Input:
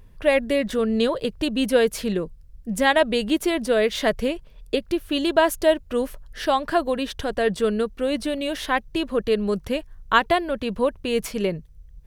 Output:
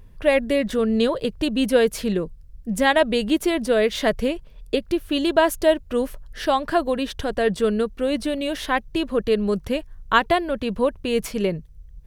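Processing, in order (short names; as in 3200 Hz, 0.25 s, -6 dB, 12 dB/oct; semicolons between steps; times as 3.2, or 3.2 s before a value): low shelf 380 Hz +2.5 dB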